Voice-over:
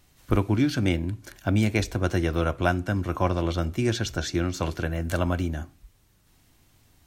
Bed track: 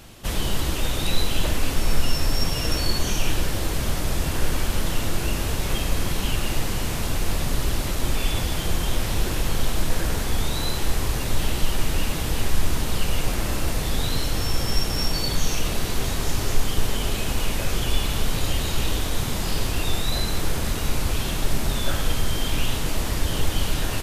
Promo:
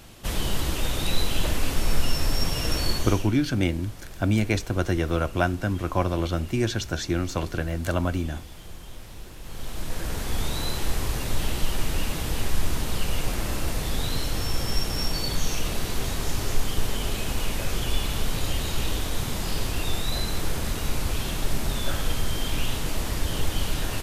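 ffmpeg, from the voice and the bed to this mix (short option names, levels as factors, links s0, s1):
-filter_complex "[0:a]adelay=2750,volume=1[s0];[1:a]volume=4.47,afade=t=out:st=2.9:d=0.41:silence=0.158489,afade=t=in:st=9.4:d=1.05:silence=0.177828[s1];[s0][s1]amix=inputs=2:normalize=0"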